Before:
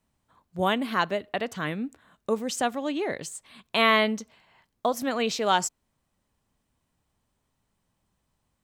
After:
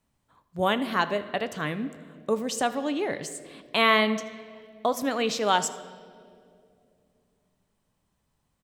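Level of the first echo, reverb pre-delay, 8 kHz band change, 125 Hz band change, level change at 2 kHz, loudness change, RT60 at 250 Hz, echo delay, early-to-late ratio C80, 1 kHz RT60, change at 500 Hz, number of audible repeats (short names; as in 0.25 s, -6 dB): -20.5 dB, 7 ms, 0.0 dB, 0.0 dB, +0.5 dB, 0.0 dB, 3.3 s, 79 ms, 15.0 dB, 1.9 s, +0.5 dB, 1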